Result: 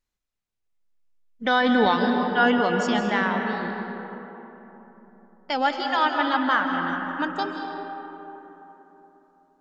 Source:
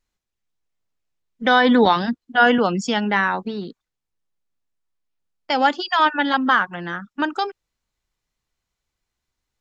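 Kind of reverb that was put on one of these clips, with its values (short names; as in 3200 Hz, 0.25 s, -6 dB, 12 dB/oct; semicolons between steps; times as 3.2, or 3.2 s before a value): digital reverb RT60 3.8 s, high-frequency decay 0.4×, pre-delay 0.115 s, DRR 3 dB; gain -5.5 dB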